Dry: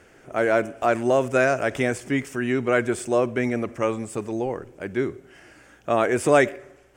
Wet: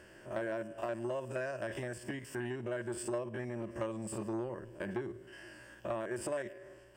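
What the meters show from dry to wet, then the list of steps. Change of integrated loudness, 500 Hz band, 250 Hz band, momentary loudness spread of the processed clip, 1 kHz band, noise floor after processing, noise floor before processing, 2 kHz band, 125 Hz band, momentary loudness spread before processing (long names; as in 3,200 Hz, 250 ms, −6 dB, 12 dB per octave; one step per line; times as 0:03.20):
−16.0 dB, −16.0 dB, −14.5 dB, 8 LU, −18.5 dB, −57 dBFS, −54 dBFS, −17.5 dB, −12.0 dB, 11 LU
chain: spectrum averaged block by block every 50 ms
downward compressor 12 to 1, threshold −31 dBFS, peak gain reduction 19 dB
EQ curve with evenly spaced ripples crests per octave 1.3, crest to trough 10 dB
saturating transformer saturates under 880 Hz
level −3.5 dB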